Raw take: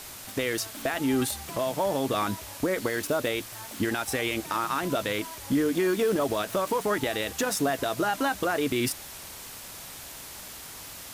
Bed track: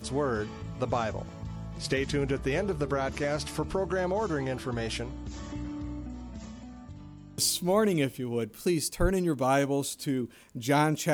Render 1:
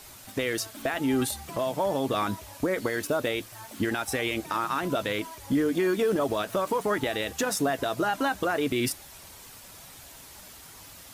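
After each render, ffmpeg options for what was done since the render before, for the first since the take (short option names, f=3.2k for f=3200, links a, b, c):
-af "afftdn=nr=7:nf=-43"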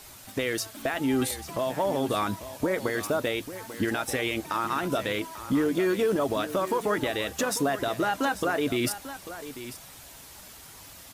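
-af "aecho=1:1:843:0.224"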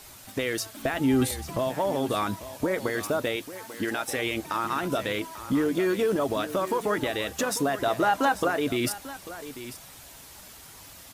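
-filter_complex "[0:a]asettb=1/sr,asplit=3[a][b][c];[a]atrim=end=0.844[d];[b]atrim=start=0.84:end=1.69,asetpts=PTS-STARTPTS,afade=t=in:d=0.004:c=qsin,afade=t=out:st=0.846:d=0.004:c=qsin,lowshelf=f=220:g=8[e];[c]atrim=start=1.686[f];[d][e]acrossfade=d=0.004:c1=hsin:c2=qsin[g];[g][f]acrossfade=d=0.004:c1=qsin:c2=hsin,asettb=1/sr,asplit=3[h][i][j];[h]atrim=end=3.364[k];[i]atrim=start=3.36:end=4.17,asetpts=PTS-STARTPTS,afade=t=in:d=0.004:c=qsin,afade=t=out:st=0.806:d=0.004:c=qsin,lowshelf=f=150:g=-11[l];[j]atrim=start=4.166[m];[k][l]acrossfade=d=0.004:c1=hsin:c2=qsin[n];[n][m]acrossfade=d=0.004:c1=qsin:c2=hsin,asettb=1/sr,asplit=3[o][p][q];[o]atrim=end=7.844[r];[p]atrim=start=7.84:end=8.48,asetpts=PTS-STARTPTS,afade=t=in:d=0.004:c=qsin,afade=t=out:st=0.636:d=0.004:c=qsin,equalizer=f=840:t=o:w=1.5:g=5.5[s];[q]atrim=start=8.476[t];[r][s]acrossfade=d=0.004:c1=hsin:c2=qsin[u];[u][t]acrossfade=d=0.004:c1=qsin:c2=hsin"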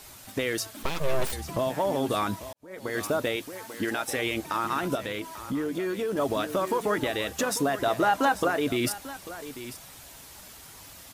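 -filter_complex "[0:a]asettb=1/sr,asplit=3[a][b][c];[a]atrim=end=0.834[d];[b]atrim=start=0.83:end=1.33,asetpts=PTS-STARTPTS,afade=t=in:d=0.004:c=qsin,afade=t=out:st=0.496:d=0.004:c=qsin,aeval=exprs='abs(val(0))':c=same[e];[c]atrim=start=1.326[f];[d][e]acrossfade=d=0.004:c1=hsin:c2=qsin[g];[g][f]acrossfade=d=0.004:c1=qsin:c2=hsin,asettb=1/sr,asplit=3[h][i][j];[h]atrim=end=4.954[k];[i]atrim=start=4.95:end=6.17,asetpts=PTS-STARTPTS,afade=t=in:d=0.004:c=qsin,afade=t=out:st=1.216:d=0.004:c=qsin,acompressor=threshold=-35dB:ratio=1.5:attack=3.2:release=140:knee=1:detection=peak[l];[j]atrim=start=6.166[m];[k][l]acrossfade=d=0.004:c1=hsin:c2=qsin[n];[n][m]acrossfade=d=0.004:c1=qsin:c2=hsin,asplit=2[o][p];[o]atrim=end=2.53,asetpts=PTS-STARTPTS,afade=t=out:st=2.526:d=0.004:c=hsin[q];[p]atrim=start=2.53,asetpts=PTS-STARTPTS,afade=t=in:d=0.45:c=qua[r];[q][r]concat=n=2:v=0:a=1"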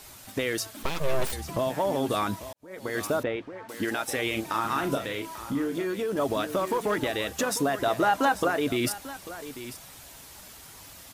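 -filter_complex "[0:a]asettb=1/sr,asplit=3[a][b][c];[a]atrim=end=3.234[d];[b]atrim=start=3.23:end=3.69,asetpts=PTS-STARTPTS,afade=t=in:d=0.004:c=qsin,afade=t=out:st=0.456:d=0.004:c=qsin,lowpass=1.9k[e];[c]atrim=start=3.686[f];[d][e]acrossfade=d=0.004:c1=hsin:c2=qsin[g];[g][f]acrossfade=d=0.004:c1=qsin:c2=hsin,asettb=1/sr,asplit=3[h][i][j];[h]atrim=end=4.304[k];[i]atrim=start=4.3:end=5.84,asetpts=PTS-STARTPTS,afade=t=in:d=0.004:c=qsin,afade=t=out:st=1.536:d=0.004:c=qsin,asplit=2[l][m];[m]adelay=36,volume=-7dB[n];[l][n]amix=inputs=2:normalize=0,atrim=end_sample=67914[o];[j]atrim=start=5.836[p];[k][o]acrossfade=d=0.004:c1=hsin:c2=qsin[q];[q][p]acrossfade=d=0.004:c1=qsin:c2=hsin,asettb=1/sr,asplit=3[r][s][t];[r]atrim=end=6.574[u];[s]atrim=start=6.57:end=7.17,asetpts=PTS-STARTPTS,afade=t=in:d=0.004:c=qsin,afade=t=out:st=0.596:d=0.004:c=qsin,asoftclip=type=hard:threshold=-20dB[v];[t]atrim=start=7.166[w];[u][v]acrossfade=d=0.004:c1=hsin:c2=qsin[x];[x][w]acrossfade=d=0.004:c1=qsin:c2=hsin"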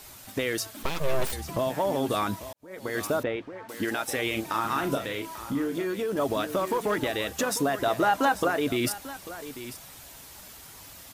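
-af "equalizer=f=14k:w=4.8:g=4"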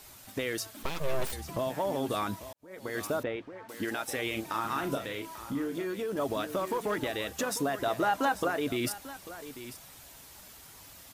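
-af "volume=-4.5dB"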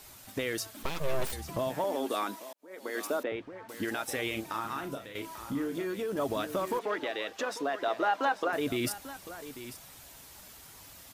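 -filter_complex "[0:a]asettb=1/sr,asplit=3[a][b][c];[a]atrim=end=1.844[d];[b]atrim=start=1.84:end=3.32,asetpts=PTS-STARTPTS,afade=t=in:d=0.004:c=qsin,afade=t=out:st=1.476:d=0.004:c=qsin,highpass=f=250:w=0.5412,highpass=f=250:w=1.3066[e];[c]atrim=start=3.316[f];[d][e]acrossfade=d=0.004:c1=hsin:c2=qsin[g];[g][f]acrossfade=d=0.004:c1=qsin:c2=hsin,asettb=1/sr,asplit=3[h][i][j];[h]atrim=end=6.794[k];[i]atrim=start=6.79:end=8.53,asetpts=PTS-STARTPTS,afade=t=in:d=0.004:c=qsin,afade=t=out:st=1.736:d=0.004:c=qsin,acrossover=split=280 5300:gain=0.0708 1 0.158[l][m][n];[l][m][n]amix=inputs=3:normalize=0[o];[j]atrim=start=8.526[p];[k][o]acrossfade=d=0.004:c1=hsin:c2=qsin[q];[q][p]acrossfade=d=0.004:c1=qsin:c2=hsin,asplit=2[r][s];[r]atrim=end=5.15,asetpts=PTS-STARTPTS,afade=t=out:st=4.23:d=0.92:silence=0.334965[t];[s]atrim=start=5.15,asetpts=PTS-STARTPTS,afade=t=in:d=0.004:c=hsin:silence=0.334965[u];[t][u]concat=n=2:v=0:a=1"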